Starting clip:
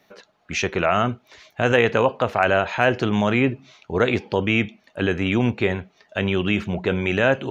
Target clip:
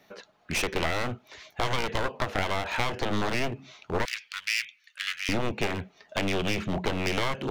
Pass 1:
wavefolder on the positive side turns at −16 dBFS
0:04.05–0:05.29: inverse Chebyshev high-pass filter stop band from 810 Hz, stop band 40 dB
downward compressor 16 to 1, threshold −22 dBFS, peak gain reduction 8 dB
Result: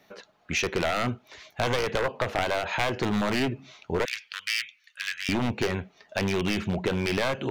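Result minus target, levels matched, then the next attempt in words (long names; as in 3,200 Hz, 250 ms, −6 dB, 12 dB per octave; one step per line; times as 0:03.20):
wavefolder on the positive side: distortion −16 dB
wavefolder on the positive side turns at −24.5 dBFS
0:04.05–0:05.29: inverse Chebyshev high-pass filter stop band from 810 Hz, stop band 40 dB
downward compressor 16 to 1, threshold −22 dBFS, peak gain reduction 9 dB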